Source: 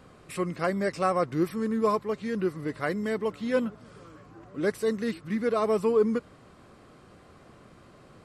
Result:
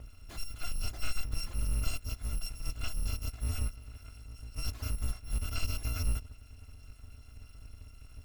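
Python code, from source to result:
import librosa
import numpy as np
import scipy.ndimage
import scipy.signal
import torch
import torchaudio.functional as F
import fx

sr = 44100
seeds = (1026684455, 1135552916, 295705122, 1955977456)

y = fx.bit_reversed(x, sr, seeds[0], block=256)
y = 10.0 ** (-28.0 / 20.0) * np.tanh(y / 10.0 ** (-28.0 / 20.0))
y = fx.riaa(y, sr, side='playback')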